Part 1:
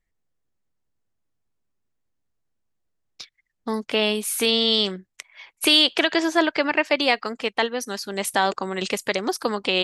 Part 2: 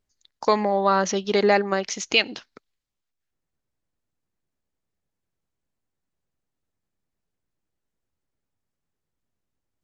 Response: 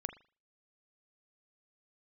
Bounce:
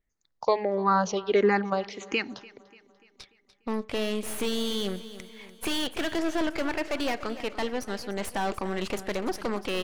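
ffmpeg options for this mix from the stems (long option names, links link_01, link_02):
-filter_complex "[0:a]aeval=exprs='(tanh(17.8*val(0)+0.7)-tanh(0.7))/17.8':channel_layout=same,volume=-2dB,asplit=3[link_01][link_02][link_03];[link_02]volume=-6dB[link_04];[link_03]volume=-11.5dB[link_05];[1:a]dynaudnorm=framelen=200:gausssize=5:maxgain=5dB,asplit=2[link_06][link_07];[link_07]afreqshift=-1.5[link_08];[link_06][link_08]amix=inputs=2:normalize=1,volume=-4dB,asplit=3[link_09][link_10][link_11];[link_10]volume=-17.5dB[link_12];[link_11]volume=-21dB[link_13];[2:a]atrim=start_sample=2205[link_14];[link_04][link_12]amix=inputs=2:normalize=0[link_15];[link_15][link_14]afir=irnorm=-1:irlink=0[link_16];[link_05][link_13]amix=inputs=2:normalize=0,aecho=0:1:293|586|879|1172|1465|1758|2051|2344:1|0.52|0.27|0.141|0.0731|0.038|0.0198|0.0103[link_17];[link_01][link_09][link_16][link_17]amix=inputs=4:normalize=0,highshelf=frequency=2800:gain=-8"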